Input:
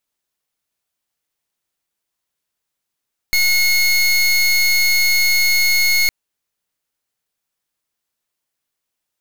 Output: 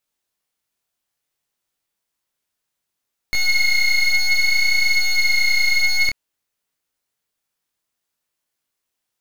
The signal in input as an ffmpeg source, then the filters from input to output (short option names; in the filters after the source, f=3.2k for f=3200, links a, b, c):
-f lavfi -i "aevalsrc='0.188*(2*lt(mod(2170*t,1),0.25)-1)':d=2.76:s=44100"
-filter_complex "[0:a]acrossover=split=4700[a][b];[b]acompressor=threshold=-31dB:ratio=4:attack=1:release=60[c];[a][c]amix=inputs=2:normalize=0,asplit=2[d][e];[e]asoftclip=type=hard:threshold=-21dB,volume=-7dB[f];[d][f]amix=inputs=2:normalize=0,flanger=delay=19.5:depth=7.9:speed=0.59"